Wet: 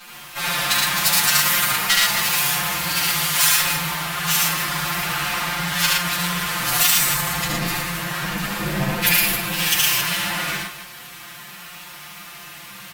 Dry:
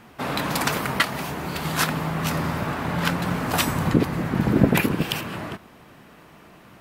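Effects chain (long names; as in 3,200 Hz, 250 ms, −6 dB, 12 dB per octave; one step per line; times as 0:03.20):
lower of the sound and its delayed copy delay 5.7 ms
in parallel at −3 dB: compressor whose output falls as the input rises −34 dBFS, ratio −1
on the sum: parametric band 400 Hz −12 dB 2.1 octaves
phase-vocoder stretch with locked phases 1.9×
spectral tilt +2.5 dB per octave
on a send: loudspeakers that aren't time-aligned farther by 25 metres −2 dB, 39 metres −3 dB, 91 metres −11 dB
on the sum: boost into a limiter +7.5 dB
level −4.5 dB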